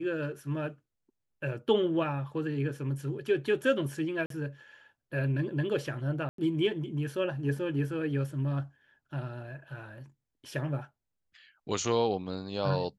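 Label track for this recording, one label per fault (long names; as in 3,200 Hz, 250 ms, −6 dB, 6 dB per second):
4.260000	4.300000	drop-out 43 ms
6.290000	6.380000	drop-out 93 ms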